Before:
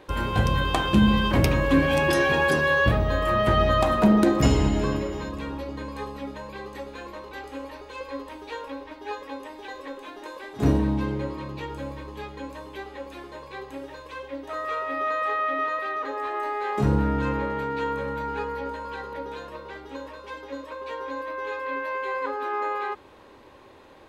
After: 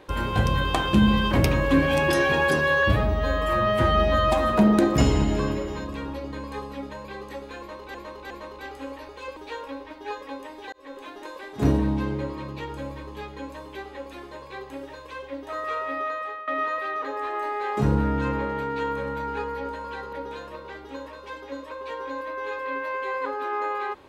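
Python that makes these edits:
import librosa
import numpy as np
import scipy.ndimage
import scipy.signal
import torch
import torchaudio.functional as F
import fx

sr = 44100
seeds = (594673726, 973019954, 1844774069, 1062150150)

y = fx.edit(x, sr, fx.stretch_span(start_s=2.83, length_s=1.11, factor=1.5),
    fx.repeat(start_s=7.03, length_s=0.36, count=3),
    fx.cut(start_s=8.09, length_s=0.28),
    fx.fade_in_span(start_s=9.73, length_s=0.27),
    fx.fade_out_to(start_s=14.89, length_s=0.59, floor_db=-15.5), tone=tone)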